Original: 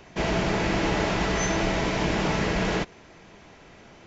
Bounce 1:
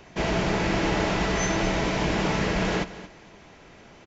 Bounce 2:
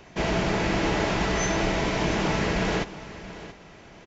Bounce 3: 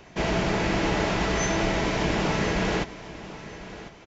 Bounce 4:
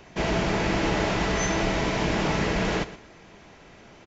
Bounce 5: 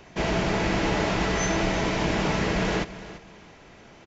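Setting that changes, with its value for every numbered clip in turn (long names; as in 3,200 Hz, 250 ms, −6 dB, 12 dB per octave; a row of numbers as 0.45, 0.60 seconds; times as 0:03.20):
repeating echo, delay time: 226, 679, 1,049, 120, 339 milliseconds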